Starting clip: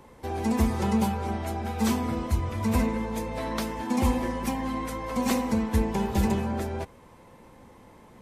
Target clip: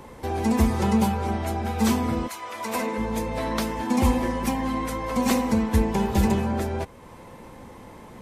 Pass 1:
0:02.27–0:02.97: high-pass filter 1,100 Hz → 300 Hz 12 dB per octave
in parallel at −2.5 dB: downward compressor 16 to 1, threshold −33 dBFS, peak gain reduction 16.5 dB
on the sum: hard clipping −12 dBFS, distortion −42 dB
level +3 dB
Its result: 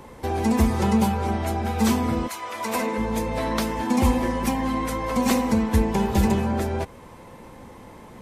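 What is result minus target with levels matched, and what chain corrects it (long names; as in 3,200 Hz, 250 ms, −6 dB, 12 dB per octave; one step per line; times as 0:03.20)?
downward compressor: peak gain reduction −11 dB
0:02.27–0:02.97: high-pass filter 1,100 Hz → 300 Hz 12 dB per octave
in parallel at −2.5 dB: downward compressor 16 to 1, threshold −44.5 dBFS, peak gain reduction 27 dB
on the sum: hard clipping −12 dBFS, distortion −47 dB
level +3 dB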